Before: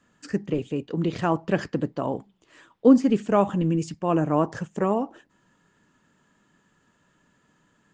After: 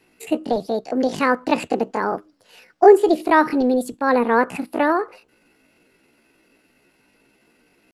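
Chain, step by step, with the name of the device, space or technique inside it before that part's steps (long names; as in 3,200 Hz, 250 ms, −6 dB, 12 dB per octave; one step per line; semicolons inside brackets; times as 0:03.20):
chipmunk voice (pitch shifter +7.5 semitones)
level +5 dB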